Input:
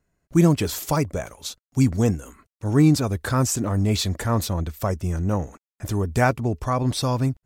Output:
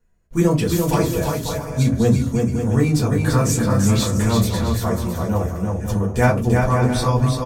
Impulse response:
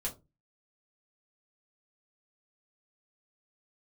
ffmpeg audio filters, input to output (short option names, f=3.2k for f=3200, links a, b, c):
-filter_complex "[0:a]aecho=1:1:340|544|666.4|739.8|783.9:0.631|0.398|0.251|0.158|0.1[a];[1:a]atrim=start_sample=2205[b];[a][b]afir=irnorm=-1:irlink=0"